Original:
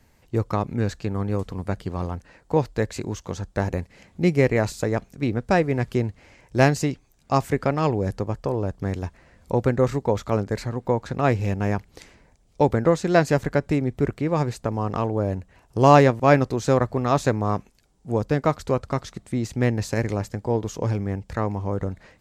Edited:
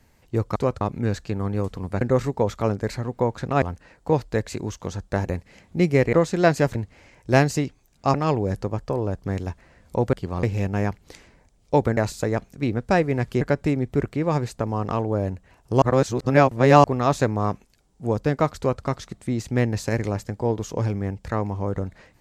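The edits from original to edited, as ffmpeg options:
-filter_complex "[0:a]asplit=14[a][b][c][d][e][f][g][h][i][j][k][l][m][n];[a]atrim=end=0.562[o];[b]atrim=start=18.628:end=18.882[p];[c]atrim=start=0.558:end=1.762[q];[d]atrim=start=9.688:end=11.302[r];[e]atrim=start=2.058:end=4.572[s];[f]atrim=start=12.838:end=13.462[t];[g]atrim=start=6.008:end=7.402[u];[h]atrim=start=7.698:end=9.692[v];[i]atrim=start=1.758:end=2.062[w];[j]atrim=start=11.298:end=12.842[x];[k]atrim=start=4.568:end=6.012[y];[l]atrim=start=13.458:end=15.872[z];[m]atrim=start=15.868:end=16.892,asetpts=PTS-STARTPTS,areverse[aa];[n]atrim=start=16.888[ab];[o][p]acrossfade=d=0.004:c1=hsin:c2=hsin[ac];[ac][q]acrossfade=d=0.004:c1=hsin:c2=hsin[ad];[ad][r]acrossfade=d=0.004:c1=hsin:c2=hsin[ae];[ae][s]acrossfade=d=0.004:c1=hsin:c2=hsin[af];[af][t]acrossfade=d=0.004:c1=hsin:c2=hsin[ag];[ag][u]acrossfade=d=0.004:c1=hsin:c2=hsin[ah];[ah][v]acrossfade=d=0.004:c1=hsin:c2=hsin[ai];[ai][w]acrossfade=d=0.004:c1=hsin:c2=hsin[aj];[aj][x]acrossfade=d=0.004:c1=hsin:c2=hsin[ak];[ak][y]acrossfade=d=0.004:c1=hsin:c2=hsin[al];[al][z]acrossfade=d=0.004:c1=hsin:c2=hsin[am];[am][aa]acrossfade=d=0.004:c1=hsin:c2=hsin[an];[an][ab]acrossfade=d=0.004:c1=hsin:c2=hsin"

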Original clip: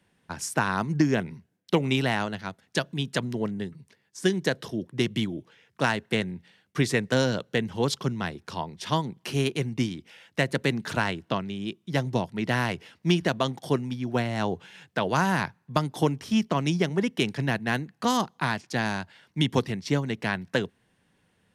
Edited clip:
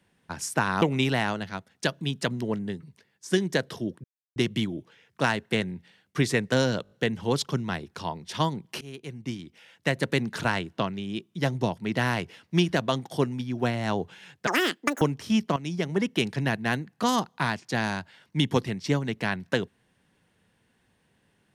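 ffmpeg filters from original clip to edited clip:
-filter_complex "[0:a]asplit=11[a][b][c][d][e][f][g][h][i][j][k];[a]atrim=end=0.822[l];[b]atrim=start=1.738:end=4.96,asetpts=PTS-STARTPTS,afade=t=out:st=3.218:d=0.004:c=hsin,apad=pad_dur=0.32[m];[c]atrim=start=4.96:end=7.452,asetpts=PTS-STARTPTS,afade=t=in:d=0.004:c=hsin[n];[d]atrim=start=7.428:end=7.452[o];[e]atrim=start=7.428:end=7.452[p];[f]atrim=start=7.428:end=7.452[q];[g]atrim=start=7.428:end=9.33,asetpts=PTS-STARTPTS,afade=t=out:st=1.898:d=0.004:c=hsin:silence=0.0841395[r];[h]atrim=start=9.33:end=14.994,asetpts=PTS-STARTPTS,afade=t=in:d=1.2:silence=0.0841395[s];[i]atrim=start=14.99:end=16.03,asetpts=PTS-STARTPTS,asetrate=84231,aresample=44100[t];[j]atrim=start=16.026:end=16.58,asetpts=PTS-STARTPTS,afade=t=out:st=0.55:d=0.004:c=hsin:silence=0.223872[u];[k]atrim=start=16.58,asetpts=PTS-STARTPTS,afade=t=in:d=0.44:silence=0.223872[v];[m][n]concat=n=2:v=0:a=1[w];[l][w]acrossfade=d=0.004:c1=hsin:c2=hsin[x];[x][o]acrossfade=d=0.004:c1=hsin:c2=hsin[y];[y][p]acrossfade=d=0.004:c1=hsin:c2=hsin[z];[z][q]acrossfade=d=0.004:c1=hsin:c2=hsin[aa];[r][s]concat=n=2:v=0:a=1[ab];[aa][ab]acrossfade=d=0.004:c1=hsin:c2=hsin[ac];[ac][t]acrossfade=d=0.004:c1=hsin:c2=hsin[ad];[u][v]concat=n=2:v=0:a=1[ae];[ad][ae]acrossfade=d=0.004:c1=hsin:c2=hsin"

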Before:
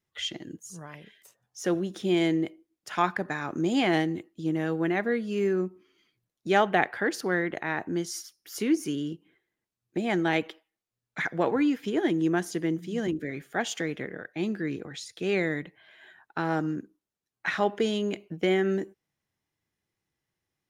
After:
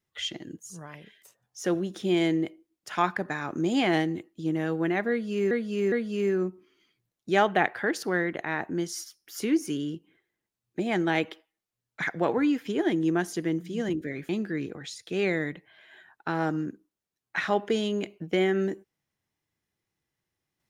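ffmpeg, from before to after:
-filter_complex "[0:a]asplit=4[a][b][c][d];[a]atrim=end=5.512[e];[b]atrim=start=5.098:end=5.512[f];[c]atrim=start=5.098:end=13.472[g];[d]atrim=start=14.388[h];[e][f]acrossfade=d=0.004:c1=hsin:c2=hsin[i];[i][g]acrossfade=d=0.004:c1=hsin:c2=hsin[j];[j][h]acrossfade=d=0.004:c1=hsin:c2=hsin"

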